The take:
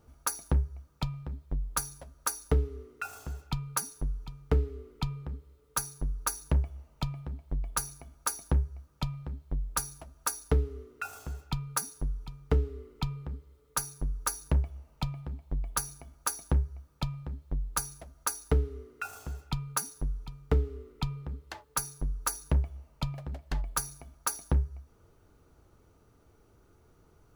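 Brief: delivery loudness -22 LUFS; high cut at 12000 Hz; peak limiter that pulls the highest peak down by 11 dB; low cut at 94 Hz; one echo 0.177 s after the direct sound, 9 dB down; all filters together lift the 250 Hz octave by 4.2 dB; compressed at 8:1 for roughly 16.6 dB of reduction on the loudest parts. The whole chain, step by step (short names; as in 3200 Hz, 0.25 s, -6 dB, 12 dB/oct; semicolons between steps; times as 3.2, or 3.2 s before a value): HPF 94 Hz; LPF 12000 Hz; bell 250 Hz +6.5 dB; compressor 8:1, threshold -40 dBFS; limiter -34.5 dBFS; echo 0.177 s -9 dB; gain +27.5 dB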